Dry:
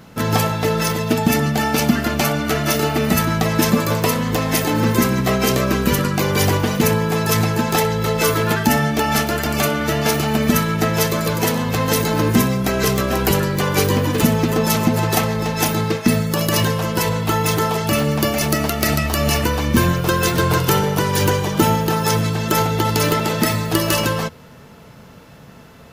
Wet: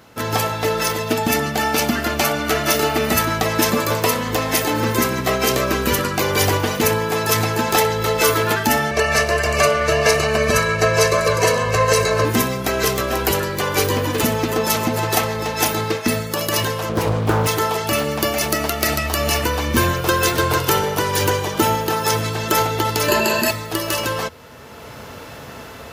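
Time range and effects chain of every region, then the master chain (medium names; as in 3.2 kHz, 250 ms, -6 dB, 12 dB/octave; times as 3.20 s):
8.91–12.25 s: low-pass 7.8 kHz + band-stop 3.4 kHz, Q 5.3 + comb 1.8 ms, depth 95%
16.89–17.47 s: tilt shelf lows +7 dB, about 880 Hz + doubling 19 ms -14 dB + loudspeaker Doppler distortion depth 0.38 ms
23.08–23.51 s: rippled EQ curve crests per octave 1.4, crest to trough 14 dB + level flattener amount 70%
whole clip: high-pass 59 Hz; level rider; peaking EQ 170 Hz -12 dB 0.93 oct; trim -1 dB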